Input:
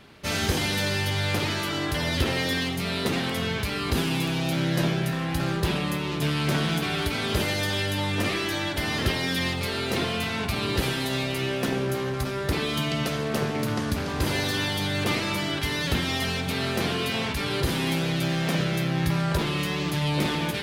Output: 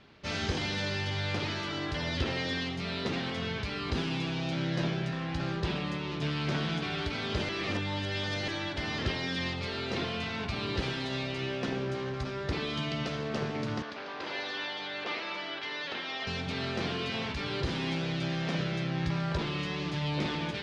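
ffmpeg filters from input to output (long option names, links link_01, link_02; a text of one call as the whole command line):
ffmpeg -i in.wav -filter_complex "[0:a]asettb=1/sr,asplit=3[link_01][link_02][link_03];[link_01]atrim=end=13.824[link_04];[link_02]atrim=start=13.82:end=16.27,asetpts=PTS-STARTPTS,afade=type=in:duration=0.004:curve=qsin,afade=type=out:start_time=2.446:duration=0.004:curve=qsin,highpass=480,lowpass=4100[link_05];[link_03]atrim=start=16.266[link_06];[link_04][link_05]acrossfade=duration=0.004:curve1=hsin:curve2=qsin[link_07];[link_07][link_06]acrossfade=duration=0.004:curve1=qsin:curve2=hsin,asplit=3[link_08][link_09][link_10];[link_08]atrim=end=7.492[link_11];[link_09]atrim=start=7.488:end=8.482,asetpts=PTS-STARTPTS,areverse[link_12];[link_10]atrim=start=8.478[link_13];[link_11][link_12]acrossfade=duration=0.004:curve1=hsin:curve2=hsin[link_14];[link_14][link_13]acrossfade=duration=0.004:curve1=hsin:curve2=hsin,lowpass=frequency=5800:width=0.5412,lowpass=frequency=5800:width=1.3066,volume=-6.5dB" out.wav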